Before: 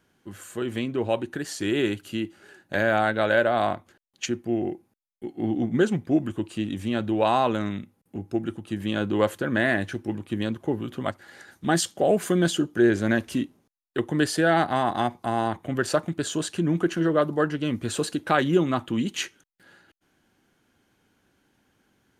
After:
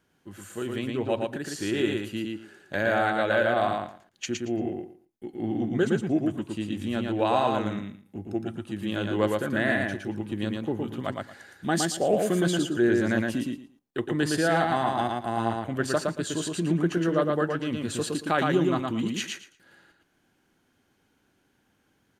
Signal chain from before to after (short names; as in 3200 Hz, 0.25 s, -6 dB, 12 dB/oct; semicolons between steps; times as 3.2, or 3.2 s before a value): feedback echo 0.114 s, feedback 19%, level -3 dB; gain -3.5 dB